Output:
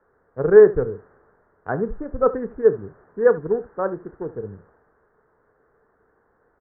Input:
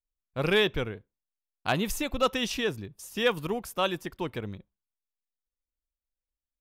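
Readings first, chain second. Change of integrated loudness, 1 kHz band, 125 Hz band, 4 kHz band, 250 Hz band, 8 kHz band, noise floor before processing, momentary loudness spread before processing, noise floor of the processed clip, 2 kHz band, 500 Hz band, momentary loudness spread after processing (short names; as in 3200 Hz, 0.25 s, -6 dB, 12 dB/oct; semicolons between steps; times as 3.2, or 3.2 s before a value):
+9.0 dB, +2.0 dB, +2.5 dB, under -40 dB, +3.5 dB, under -40 dB, under -85 dBFS, 15 LU, -65 dBFS, -2.0 dB, +13.0 dB, 24 LU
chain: Wiener smoothing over 41 samples; in parallel at -6 dB: requantised 6-bit, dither triangular; on the sum: steep low-pass 1700 Hz 72 dB/oct; bell 440 Hz +13 dB 0.38 oct; on a send: early reflections 31 ms -14.5 dB, 75 ms -16.5 dB; on the sum: three-band expander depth 40%; gain -2 dB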